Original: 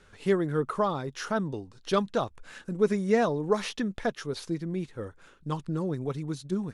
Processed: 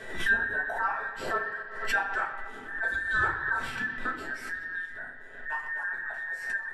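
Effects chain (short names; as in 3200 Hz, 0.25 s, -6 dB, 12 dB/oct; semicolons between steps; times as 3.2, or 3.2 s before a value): band inversion scrambler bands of 2000 Hz; bell 5500 Hz -7.5 dB 1.2 oct; analogue delay 0.122 s, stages 4096, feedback 72%, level -13 dB; reverb RT60 0.45 s, pre-delay 4 ms, DRR -4.5 dB; backwards sustainer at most 76 dB/s; gain -8.5 dB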